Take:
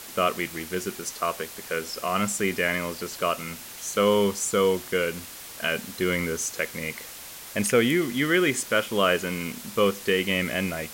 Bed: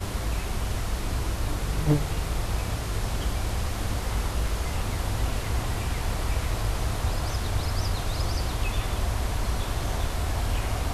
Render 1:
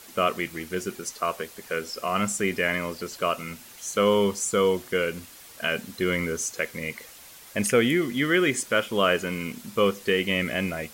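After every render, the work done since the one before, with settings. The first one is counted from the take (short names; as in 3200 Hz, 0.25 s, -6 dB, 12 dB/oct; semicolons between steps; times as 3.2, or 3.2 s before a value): denoiser 7 dB, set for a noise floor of -41 dBFS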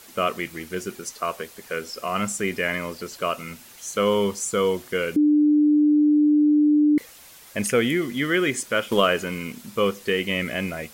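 5.16–6.98 bleep 298 Hz -14 dBFS; 8.87–9.4 transient shaper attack +8 dB, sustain +2 dB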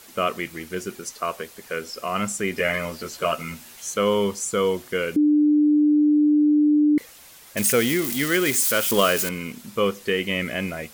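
2.56–3.94 doubler 13 ms -2 dB; 7.57–9.29 switching spikes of -17.5 dBFS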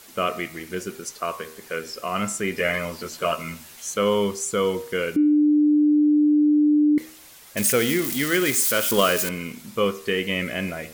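de-hum 78.7 Hz, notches 36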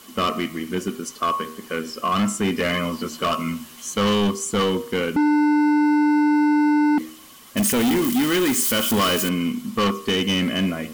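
small resonant body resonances 240/1100/3000 Hz, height 14 dB, ringing for 35 ms; overloaded stage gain 16.5 dB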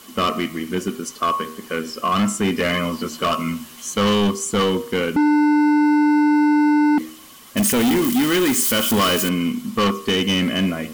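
gain +2 dB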